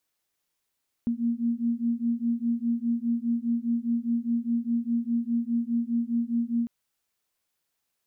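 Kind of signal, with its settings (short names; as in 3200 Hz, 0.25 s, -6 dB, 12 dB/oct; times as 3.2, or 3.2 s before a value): beating tones 232 Hz, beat 4.9 Hz, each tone -27 dBFS 5.60 s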